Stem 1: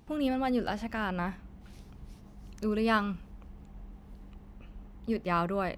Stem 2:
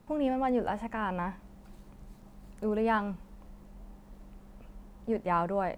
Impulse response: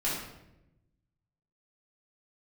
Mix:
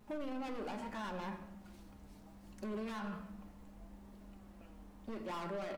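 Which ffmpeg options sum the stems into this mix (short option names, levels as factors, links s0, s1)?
-filter_complex "[0:a]volume=0.266,asplit=2[s0][s1];[s1]volume=0.266[s2];[1:a]lowshelf=f=220:g=-8,volume=59.6,asoftclip=hard,volume=0.0168,flanger=delay=4.7:depth=2.2:regen=41:speed=0.71:shape=triangular,adelay=4.1,volume=1,asplit=3[s3][s4][s5];[s4]volume=0.158[s6];[s5]apad=whole_len=254739[s7];[s0][s7]sidechaincompress=threshold=0.00398:ratio=8:attack=16:release=390[s8];[2:a]atrim=start_sample=2205[s9];[s2][s6]amix=inputs=2:normalize=0[s10];[s10][s9]afir=irnorm=-1:irlink=0[s11];[s8][s3][s11]amix=inputs=3:normalize=0,alimiter=level_in=3.35:limit=0.0631:level=0:latency=1:release=27,volume=0.299"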